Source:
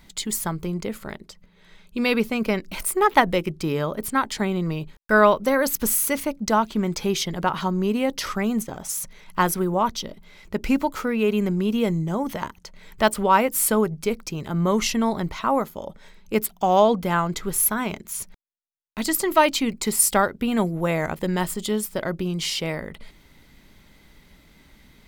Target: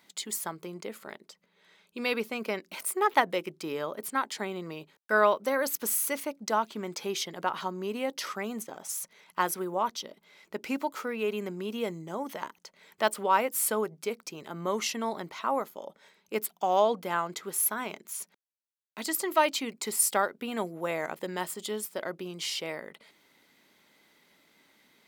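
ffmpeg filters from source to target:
-af "highpass=330,volume=0.473"

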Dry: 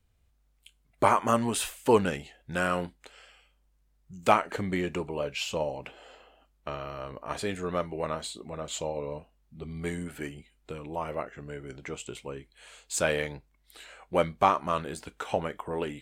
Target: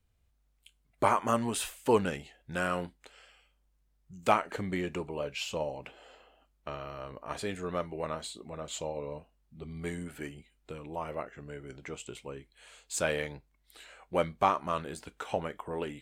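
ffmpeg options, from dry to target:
-af "volume=0.668"

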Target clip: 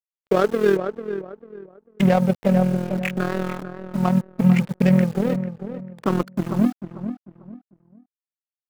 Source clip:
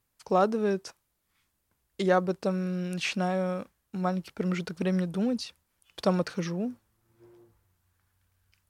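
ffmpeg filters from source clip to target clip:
-filter_complex "[0:a]afftfilt=real='re*pow(10,13/40*sin(2*PI*(0.51*log(max(b,1)*sr/1024/100)/log(2)-(-0.4)*(pts-256)/sr)))':imag='im*pow(10,13/40*sin(2*PI*(0.51*log(max(b,1)*sr/1024/100)/log(2)-(-0.4)*(pts-256)/sr)))':win_size=1024:overlap=0.75,lowpass=f=2500:t=q:w=2.2,equalizer=f=61:w=0.62:g=14.5,adynamicsmooth=sensitivity=1.5:basefreq=1000,lowshelf=f=120:t=q:w=1.5:g=-13.5,tremolo=f=41:d=0.621,aeval=exprs='sgn(val(0))*max(abs(val(0))-0.0188,0)':c=same,acrusher=bits=9:dc=4:mix=0:aa=0.000001,asplit=2[s0][s1];[s1]adelay=445,lowpass=f=1600:p=1,volume=0.316,asplit=2[s2][s3];[s3]adelay=445,lowpass=f=1600:p=1,volume=0.29,asplit=2[s4][s5];[s5]adelay=445,lowpass=f=1600:p=1,volume=0.29[s6];[s2][s4][s6]amix=inputs=3:normalize=0[s7];[s0][s7]amix=inputs=2:normalize=0,alimiter=level_in=3.98:limit=0.891:release=50:level=0:latency=1,volume=0.562"

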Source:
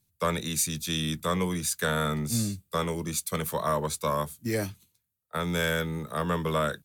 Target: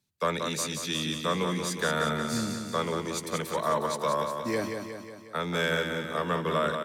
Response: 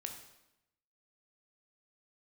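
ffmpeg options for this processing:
-filter_complex "[0:a]acrossover=split=170 6700:gain=0.224 1 0.224[s0][s1][s2];[s0][s1][s2]amix=inputs=3:normalize=0,aecho=1:1:181|362|543|724|905|1086|1267:0.501|0.286|0.163|0.0928|0.0529|0.0302|0.0172"

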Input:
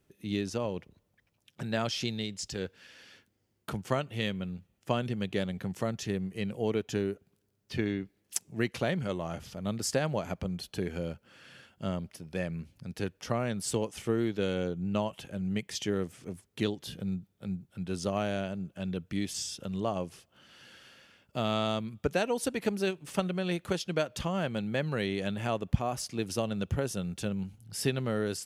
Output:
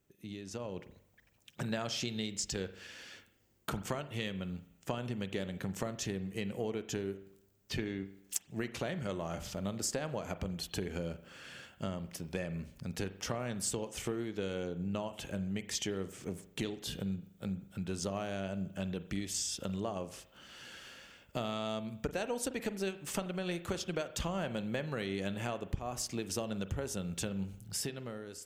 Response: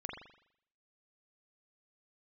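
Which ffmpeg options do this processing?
-filter_complex "[0:a]aexciter=amount=1.7:drive=2.3:freq=6500,acompressor=threshold=0.0158:ratio=6,asubboost=boost=3.5:cutoff=52,dynaudnorm=f=100:g=13:m=2.82,asplit=2[s0][s1];[1:a]atrim=start_sample=2205[s2];[s1][s2]afir=irnorm=-1:irlink=0,volume=0.422[s3];[s0][s3]amix=inputs=2:normalize=0,volume=0.422"

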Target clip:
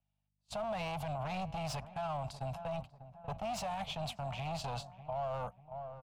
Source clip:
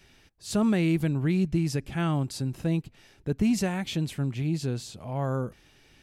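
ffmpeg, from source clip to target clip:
-filter_complex "[0:a]aeval=exprs='val(0)+0.0126*(sin(2*PI*50*n/s)+sin(2*PI*2*50*n/s)/2+sin(2*PI*3*50*n/s)/3+sin(2*PI*4*50*n/s)/4+sin(2*PI*5*50*n/s)/5)':c=same,acrossover=split=160[s0][s1];[s1]acompressor=threshold=0.0355:ratio=2.5[s2];[s0][s2]amix=inputs=2:normalize=0,agate=range=0.00562:threshold=0.0282:ratio=16:detection=peak,asplit=2[s3][s4];[s4]highpass=f=720:p=1,volume=20,asoftclip=type=tanh:threshold=0.158[s5];[s3][s5]amix=inputs=2:normalize=0,lowpass=f=4500:p=1,volume=0.501,equalizer=f=2500:t=o:w=0.77:g=2.5,acrossover=split=510|1500[s6][s7][s8];[s6]acompressor=threshold=0.0224:ratio=6[s9];[s9][s7][s8]amix=inputs=3:normalize=0,firequalizer=gain_entry='entry(140,0);entry(340,-26);entry(650,6);entry(1800,-18);entry(2800,-9);entry(5500,-13)':delay=0.05:min_phase=1,asplit=2[s10][s11];[s11]adelay=592,lowpass=f=1100:p=1,volume=0.158,asplit=2[s12][s13];[s13]adelay=592,lowpass=f=1100:p=1,volume=0.45,asplit=2[s14][s15];[s15]adelay=592,lowpass=f=1100:p=1,volume=0.45,asplit=2[s16][s17];[s17]adelay=592,lowpass=f=1100:p=1,volume=0.45[s18];[s12][s14][s16][s18]amix=inputs=4:normalize=0[s19];[s10][s19]amix=inputs=2:normalize=0,alimiter=level_in=1.78:limit=0.0631:level=0:latency=1:release=37,volume=0.562,volume=0.841"

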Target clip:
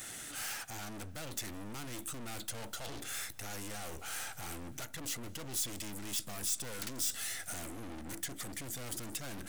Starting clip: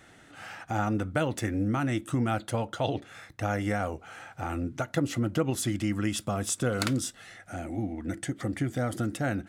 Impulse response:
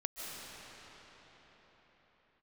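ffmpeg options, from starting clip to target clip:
-filter_complex "[0:a]acrossover=split=6400[s0][s1];[s1]acompressor=threshold=0.002:ratio=4:attack=1:release=60[s2];[s0][s2]amix=inputs=2:normalize=0,highshelf=f=6700:g=9.5,areverse,acompressor=threshold=0.02:ratio=6,areverse,aeval=exprs='(tanh(251*val(0)+0.4)-tanh(0.4))/251':c=same,crystalizer=i=4:c=0,asplit=2[s3][s4];[1:a]atrim=start_sample=2205[s5];[s4][s5]afir=irnorm=-1:irlink=0,volume=0.0794[s6];[s3][s6]amix=inputs=2:normalize=0,volume=1.41"

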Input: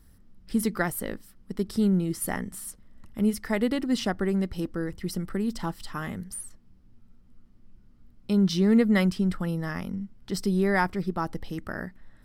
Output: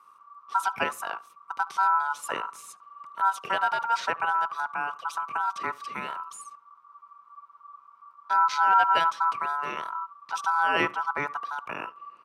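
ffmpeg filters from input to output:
-filter_complex "[0:a]highshelf=f=7900:g=-11.5,aeval=exprs='val(0)*sin(2*PI*1300*n/s)':c=same,asplit=2[s0][s1];[s1]adelay=73,lowpass=f=2700:p=1,volume=0.0891,asplit=2[s2][s3];[s3]adelay=73,lowpass=f=2700:p=1,volume=0.25[s4];[s0][s2][s4]amix=inputs=3:normalize=0,acrossover=split=140|1800[s5][s6][s7];[s5]acrusher=bits=4:mix=0:aa=0.000001[s8];[s8][s6][s7]amix=inputs=3:normalize=0,asetrate=39289,aresample=44100,atempo=1.12246,volume=1.33"

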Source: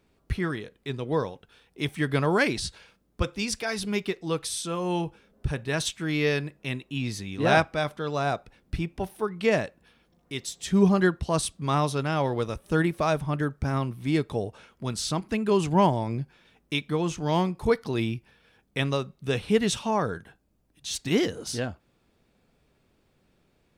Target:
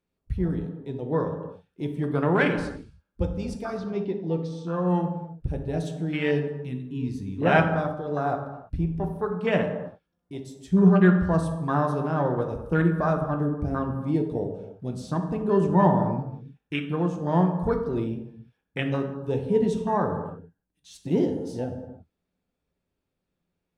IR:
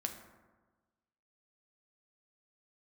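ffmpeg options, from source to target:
-filter_complex "[0:a]asettb=1/sr,asplit=3[s0][s1][s2];[s0]atrim=end=3.774[s3];[s1]atrim=start=3.77:end=4.88,asetpts=PTS-STARTPTS,afade=t=in:d=0.004:c=qsin,afade=t=out:st=1.106:d=0.004:c=qsin,lowpass=f=5700:w=0.5412,lowpass=f=5700:w=1.3066[s4];[s2]atrim=start=4.876[s5];[s3][s4]acrossfade=d=0.004:c1=hsin:c2=qsin[s6];[s6][s5]acrossfade=d=0.004:c1=qsin:c2=hsin,afwtdn=0.0355[s7];[1:a]atrim=start_sample=2205,afade=t=out:st=0.32:d=0.01,atrim=end_sample=14553,asetrate=35280,aresample=44100[s8];[s7][s8]afir=irnorm=-1:irlink=0"

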